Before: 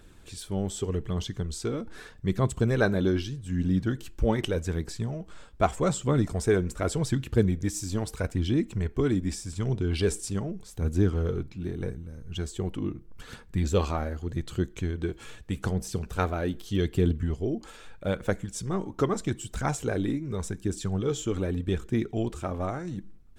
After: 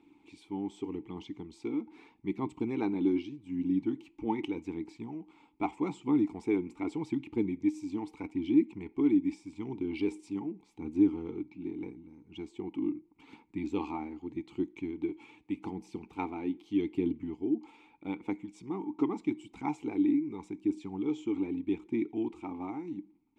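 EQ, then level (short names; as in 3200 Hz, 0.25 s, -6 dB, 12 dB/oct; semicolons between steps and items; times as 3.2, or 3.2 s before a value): vowel filter u; low shelf 160 Hz -7 dB; +8.0 dB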